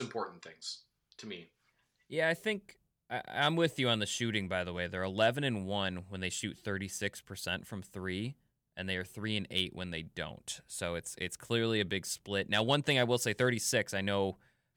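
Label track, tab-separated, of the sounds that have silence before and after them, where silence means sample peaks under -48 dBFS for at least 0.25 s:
1.120000	1.440000	sound
2.100000	2.720000	sound
3.100000	8.320000	sound
8.770000	14.330000	sound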